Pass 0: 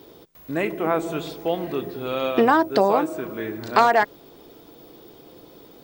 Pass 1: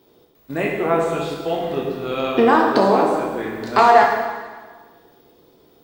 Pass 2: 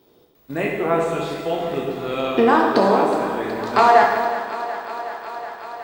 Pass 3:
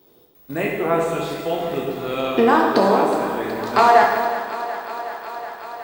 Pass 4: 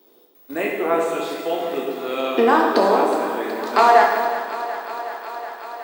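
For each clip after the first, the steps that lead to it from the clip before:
gate -35 dBFS, range -10 dB; plate-style reverb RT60 1.5 s, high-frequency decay 0.85×, pre-delay 0 ms, DRR -1.5 dB
thinning echo 369 ms, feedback 81%, high-pass 210 Hz, level -13 dB; trim -1 dB
treble shelf 11 kHz +10 dB
high-pass 240 Hz 24 dB/octave

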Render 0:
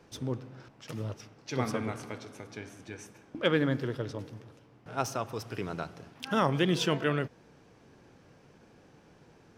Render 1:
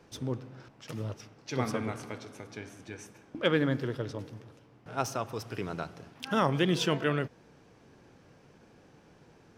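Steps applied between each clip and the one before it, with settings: no audible change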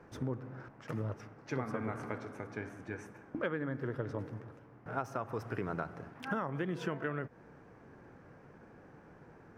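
resonant high shelf 2.4 kHz -11.5 dB, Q 1.5; compression 16:1, threshold -33 dBFS, peak gain reduction 14.5 dB; trim +1.5 dB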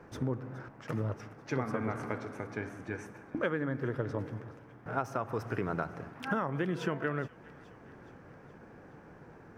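feedback echo behind a high-pass 420 ms, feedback 57%, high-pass 1.7 kHz, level -17.5 dB; trim +3.5 dB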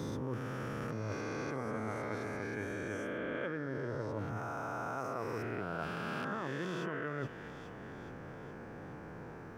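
reverse spectral sustain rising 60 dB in 2.64 s; reverse; compression 6:1, threshold -37 dBFS, peak gain reduction 13.5 dB; reverse; trim +1.5 dB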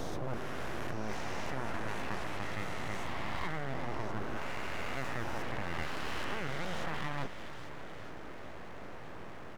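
full-wave rectifier; delay 587 ms -15 dB; trim +3.5 dB

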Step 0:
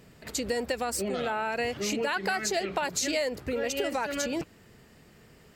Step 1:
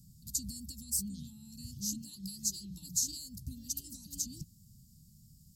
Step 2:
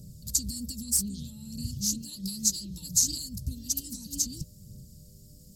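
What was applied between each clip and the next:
inverse Chebyshev band-stop 420–2400 Hz, stop band 50 dB; peaking EQ 12 kHz +6.5 dB 0.34 oct
mains buzz 100 Hz, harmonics 6, -73 dBFS -3 dB/octave; phaser 0.63 Hz, delay 4.7 ms, feedback 41%; loudspeaker Doppler distortion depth 0.16 ms; trim +8 dB

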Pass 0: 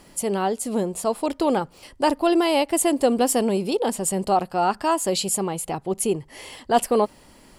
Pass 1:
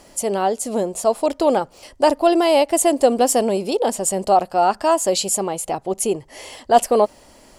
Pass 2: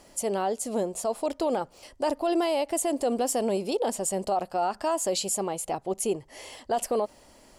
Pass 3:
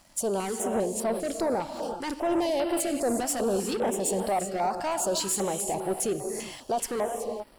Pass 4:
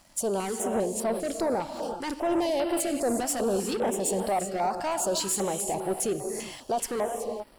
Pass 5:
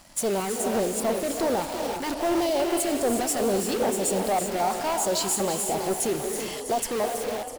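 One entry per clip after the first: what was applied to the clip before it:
fifteen-band graphic EQ 160 Hz -5 dB, 630 Hz +7 dB, 6.3 kHz +6 dB; trim +1 dB
peak limiter -11.5 dBFS, peak gain reduction 10 dB; trim -6.5 dB
gated-style reverb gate 400 ms rising, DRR 6 dB; waveshaping leveller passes 2; step-sequenced notch 5 Hz 430–6700 Hz; trim -5 dB
no audible change
frequency-shifting echo 326 ms, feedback 45%, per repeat +38 Hz, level -11 dB; in parallel at -4 dB: integer overflow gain 32.5 dB; on the sum: trim +2 dB

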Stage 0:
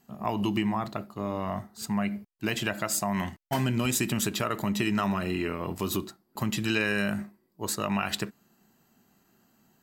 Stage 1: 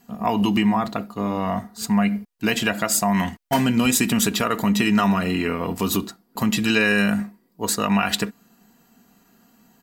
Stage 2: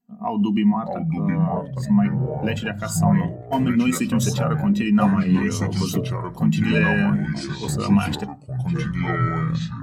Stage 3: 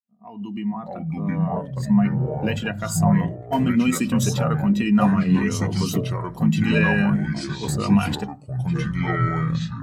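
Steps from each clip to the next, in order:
comb 4.2 ms, depth 49%; trim +7 dB
ever faster or slower copies 566 ms, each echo -4 st, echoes 3; spectral contrast expander 1.5:1; trim -2 dB
fade-in on the opening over 1.81 s

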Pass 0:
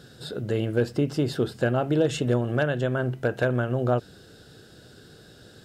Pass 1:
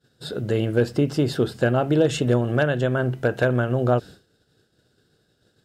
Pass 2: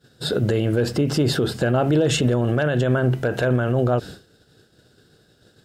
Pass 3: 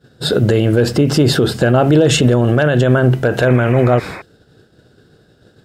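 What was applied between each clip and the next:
expander -37 dBFS; trim +3.5 dB
peak limiter -19.5 dBFS, peak gain reduction 11 dB; trim +8.5 dB
painted sound noise, 3.47–4.22 s, 290–2600 Hz -38 dBFS; tape noise reduction on one side only decoder only; trim +7.5 dB

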